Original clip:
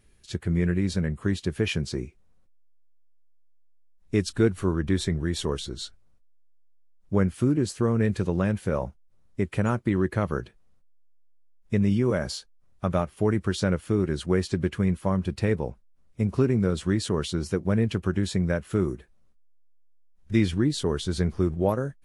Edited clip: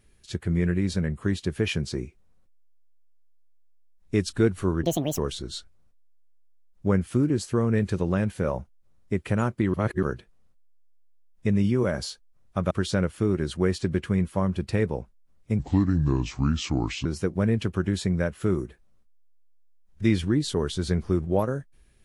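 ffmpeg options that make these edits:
ffmpeg -i in.wav -filter_complex "[0:a]asplit=8[link_01][link_02][link_03][link_04][link_05][link_06][link_07][link_08];[link_01]atrim=end=4.834[link_09];[link_02]atrim=start=4.83:end=5.45,asetpts=PTS-STARTPTS,asetrate=78498,aresample=44100[link_10];[link_03]atrim=start=5.446:end=10.012[link_11];[link_04]atrim=start=10.008:end=10.302,asetpts=PTS-STARTPTS,areverse[link_12];[link_05]atrim=start=10.298:end=12.982[link_13];[link_06]atrim=start=13.398:end=16.284[link_14];[link_07]atrim=start=16.28:end=17.35,asetpts=PTS-STARTPTS,asetrate=32193,aresample=44100[link_15];[link_08]atrim=start=17.346[link_16];[link_09][link_10]acrossfade=duration=0.004:curve1=hsin:curve2=hsin[link_17];[link_17][link_11]acrossfade=duration=0.004:curve1=hsin:curve2=hsin[link_18];[link_18][link_12]acrossfade=duration=0.004:curve1=hsin:curve2=hsin[link_19];[link_19][link_13]acrossfade=duration=0.004:curve1=hsin:curve2=hsin[link_20];[link_20][link_14]acrossfade=duration=0.004:curve1=hsin:curve2=hsin[link_21];[link_21][link_15]acrossfade=duration=0.004:curve1=hsin:curve2=hsin[link_22];[link_22][link_16]acrossfade=duration=0.004:curve1=hsin:curve2=hsin" out.wav

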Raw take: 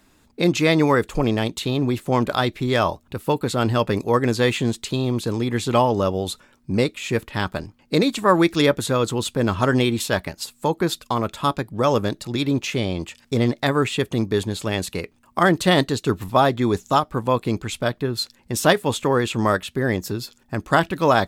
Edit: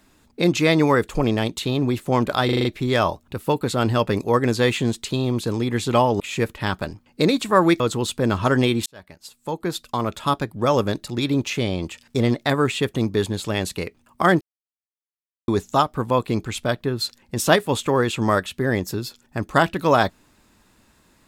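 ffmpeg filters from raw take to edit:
ffmpeg -i in.wav -filter_complex "[0:a]asplit=11[link_01][link_02][link_03][link_04][link_05][link_06][link_07][link_08][link_09][link_10][link_11];[link_01]atrim=end=2.492[link_12];[link_02]atrim=start=2.448:end=2.492[link_13];[link_03]atrim=start=2.448:end=2.492[link_14];[link_04]atrim=start=2.448:end=2.492[link_15];[link_05]atrim=start=2.448:end=2.492[link_16];[link_06]atrim=start=2.448:end=6.002[link_17];[link_07]atrim=start=6.928:end=8.532[link_18];[link_08]atrim=start=8.968:end=10.03,asetpts=PTS-STARTPTS,afade=type=out:start_time=1.058:duration=0.004:curve=hsin[link_19];[link_09]atrim=start=10.03:end=15.58,asetpts=PTS-STARTPTS,afade=type=in:duration=1.34,afade=type=out:start_time=5.546:duration=0.004:curve=hsin[link_20];[link_10]atrim=start=15.58:end=16.65,asetpts=PTS-STARTPTS,volume=0[link_21];[link_11]atrim=start=16.65,asetpts=PTS-STARTPTS,afade=type=in:duration=0.004:curve=hsin[link_22];[link_12][link_13]acrossfade=duration=0.004:curve1=hsin:curve2=hsin[link_23];[link_23][link_14]acrossfade=duration=0.004:curve1=hsin:curve2=hsin[link_24];[link_24][link_15]acrossfade=duration=0.004:curve1=hsin:curve2=hsin[link_25];[link_25][link_16]acrossfade=duration=0.004:curve1=hsin:curve2=hsin[link_26];[link_26][link_17]acrossfade=duration=0.004:curve1=hsin:curve2=hsin[link_27];[link_27][link_18]acrossfade=duration=0.004:curve1=hsin:curve2=hsin[link_28];[link_19][link_20][link_21][link_22]concat=n=4:v=0:a=1[link_29];[link_28][link_29]acrossfade=duration=0.004:curve1=hsin:curve2=hsin" out.wav

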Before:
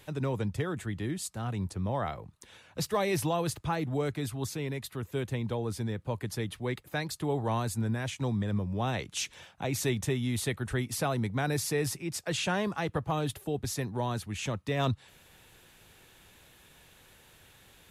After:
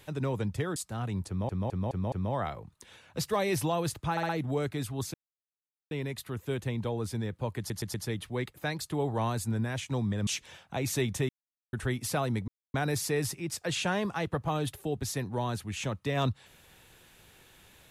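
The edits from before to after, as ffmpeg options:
ffmpeg -i in.wav -filter_complex "[0:a]asplit=17[link_01][link_02][link_03][link_04][link_05][link_06][link_07][link_08][link_09][link_10][link_11][link_12][link_13][link_14][link_15][link_16][link_17];[link_01]atrim=end=0.762[link_18];[link_02]atrim=start=1.208:end=1.942[link_19];[link_03]atrim=start=1.728:end=1.942[link_20];[link_04]atrim=start=1.728:end=1.942[link_21];[link_05]atrim=start=1.728:end=1.942[link_22];[link_06]atrim=start=1.728:end=3.782[link_23];[link_07]atrim=start=3.718:end=3.782[link_24];[link_08]atrim=start=3.718:end=3.782[link_25];[link_09]atrim=start=3.718:end=4.57,asetpts=PTS-STARTPTS,afade=type=out:start_time=0.848:duration=0.004:curve=hsin,apad=pad_dur=0.77[link_26];[link_10]atrim=start=4.57:end=6.362,asetpts=PTS-STARTPTS,afade=type=in:duration=0.004:curve=hsin[link_27];[link_11]atrim=start=6.238:end=6.362[link_28];[link_12]atrim=start=6.238:end=6.362[link_29];[link_13]atrim=start=6.238:end=8.572[link_30];[link_14]atrim=start=9.148:end=10.17,asetpts=PTS-STARTPTS,afade=type=out:start_time=1.018:duration=0.004:curve=hsin[link_31];[link_15]atrim=start=10.17:end=10.61,asetpts=PTS-STARTPTS,volume=0[link_32];[link_16]atrim=start=10.61:end=11.36,asetpts=PTS-STARTPTS,afade=type=in:duration=0.004:curve=hsin,afade=type=out:start_time=0.746:duration=0.004:curve=hsin,apad=pad_dur=0.26[link_33];[link_17]atrim=start=11.36,asetpts=PTS-STARTPTS,afade=type=in:duration=0.004:curve=hsin[link_34];[link_18][link_19]acrossfade=duration=0.004:curve1=hsin:curve2=hsin[link_35];[link_35][link_20]acrossfade=duration=0.004:curve1=hsin:curve2=hsin[link_36];[link_36][link_21]acrossfade=duration=0.004:curve1=hsin:curve2=hsin[link_37];[link_37][link_22]acrossfade=duration=0.004:curve1=hsin:curve2=hsin[link_38];[link_38][link_23]acrossfade=duration=0.004:curve1=hsin:curve2=hsin[link_39];[link_39][link_24]acrossfade=duration=0.004:curve1=hsin:curve2=hsin[link_40];[link_40][link_25]acrossfade=duration=0.004:curve1=hsin:curve2=hsin[link_41];[link_26][link_27]concat=n=2:v=0:a=1[link_42];[link_41][link_42]acrossfade=duration=0.004:curve1=hsin:curve2=hsin[link_43];[link_43][link_28]acrossfade=duration=0.004:curve1=hsin:curve2=hsin[link_44];[link_44][link_29]acrossfade=duration=0.004:curve1=hsin:curve2=hsin[link_45];[link_45][link_30]acrossfade=duration=0.004:curve1=hsin:curve2=hsin[link_46];[link_31][link_32][link_33][link_34]concat=n=4:v=0:a=1[link_47];[link_46][link_47]acrossfade=duration=0.004:curve1=hsin:curve2=hsin" out.wav

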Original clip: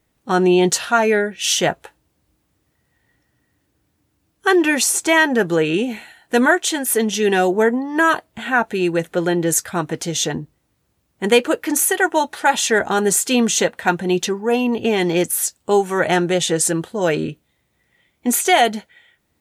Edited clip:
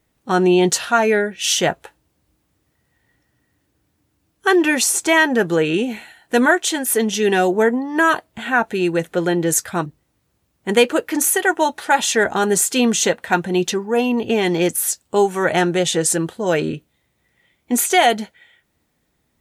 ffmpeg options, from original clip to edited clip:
ffmpeg -i in.wav -filter_complex "[0:a]asplit=2[link_01][link_02];[link_01]atrim=end=9.862[link_03];[link_02]atrim=start=10.408[link_04];[link_03][link_04]acrossfade=duration=0.004:curve1=hsin:curve2=hsin" out.wav

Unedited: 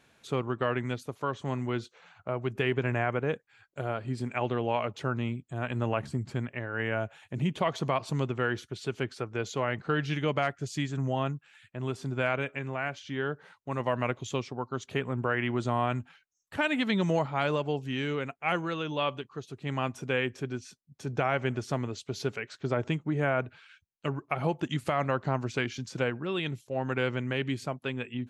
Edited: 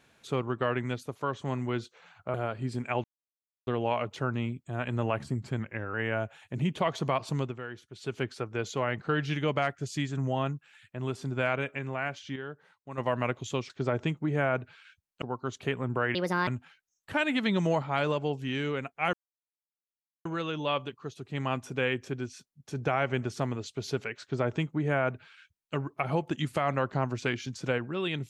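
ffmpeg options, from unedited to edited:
ffmpeg -i in.wav -filter_complex "[0:a]asplit=14[link_01][link_02][link_03][link_04][link_05][link_06][link_07][link_08][link_09][link_10][link_11][link_12][link_13][link_14];[link_01]atrim=end=2.342[link_15];[link_02]atrim=start=3.798:end=4.5,asetpts=PTS-STARTPTS,afade=type=out:start_time=0.698:duration=0.004:curve=hsin,apad=pad_dur=0.63[link_16];[link_03]atrim=start=4.5:end=6.424,asetpts=PTS-STARTPTS,afade=type=in:duration=0.004:curve=hsin[link_17];[link_04]atrim=start=6.42:end=6.74,asetpts=PTS-STARTPTS,asetrate=40572,aresample=44100,atrim=end_sample=15339,asetpts=PTS-STARTPTS[link_18];[link_05]atrim=start=6.736:end=8.41,asetpts=PTS-STARTPTS,afade=type=out:start_time=1.334:duration=0.34:curve=qsin:silence=0.281838[link_19];[link_06]atrim=start=8.41:end=8.71,asetpts=PTS-STARTPTS,volume=-11dB[link_20];[link_07]atrim=start=8.71:end=13.162,asetpts=PTS-STARTPTS,afade=type=in:duration=0.34:curve=qsin:silence=0.281838[link_21];[link_08]atrim=start=13.158:end=13.782,asetpts=PTS-STARTPTS,volume=-8dB[link_22];[link_09]atrim=start=13.778:end=14.502[link_23];[link_10]atrim=start=22.538:end=24.062[link_24];[link_11]atrim=start=14.498:end=15.434[link_25];[link_12]atrim=start=15.43:end=15.91,asetpts=PTS-STARTPTS,asetrate=65268,aresample=44100[link_26];[link_13]atrim=start=15.906:end=18.57,asetpts=PTS-STARTPTS,afade=type=out:start_time=2.66:duration=0.004:curve=hsin,apad=pad_dur=1.12[link_27];[link_14]atrim=start=18.57,asetpts=PTS-STARTPTS,afade=type=in:duration=0.004:curve=hsin[link_28];[link_16][link_17]concat=n=2:v=0:a=1[link_29];[link_15][link_29]acrossfade=duration=0.004:curve1=hsin:curve2=hsin[link_30];[link_30][link_18]acrossfade=duration=0.004:curve1=hsin:curve2=hsin[link_31];[link_19][link_20][link_21]concat=n=3:v=0:a=1[link_32];[link_31][link_32]acrossfade=duration=0.004:curve1=hsin:curve2=hsin[link_33];[link_33][link_22]acrossfade=duration=0.004:curve1=hsin:curve2=hsin[link_34];[link_34][link_23]acrossfade=duration=0.004:curve1=hsin:curve2=hsin[link_35];[link_35][link_24]acrossfade=duration=0.004:curve1=hsin:curve2=hsin[link_36];[link_36][link_25]acrossfade=duration=0.004:curve1=hsin:curve2=hsin[link_37];[link_37][link_26]acrossfade=duration=0.004:curve1=hsin:curve2=hsin[link_38];[link_27][link_28]concat=n=2:v=0:a=1[link_39];[link_38][link_39]acrossfade=duration=0.004:curve1=hsin:curve2=hsin" out.wav

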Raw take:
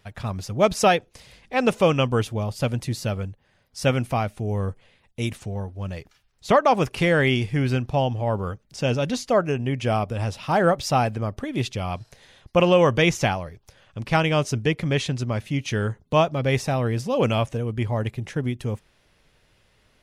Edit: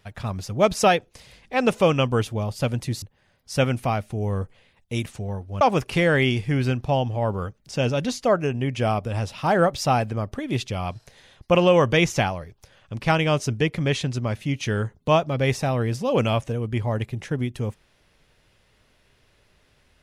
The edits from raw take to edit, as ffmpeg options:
ffmpeg -i in.wav -filter_complex "[0:a]asplit=3[link_01][link_02][link_03];[link_01]atrim=end=3.022[link_04];[link_02]atrim=start=3.288:end=5.882[link_05];[link_03]atrim=start=6.658[link_06];[link_04][link_05]acrossfade=duration=0.004:curve1=hsin:curve2=hsin[link_07];[link_07][link_06]acrossfade=duration=0.004:curve1=hsin:curve2=hsin" out.wav

